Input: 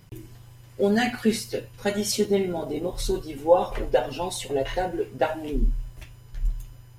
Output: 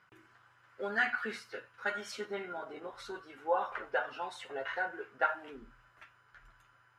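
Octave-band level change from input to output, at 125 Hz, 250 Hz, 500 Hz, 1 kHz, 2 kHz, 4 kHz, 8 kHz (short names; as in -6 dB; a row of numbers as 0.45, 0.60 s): -27.0, -21.5, -15.0, -6.5, 0.0, -14.0, -21.5 dB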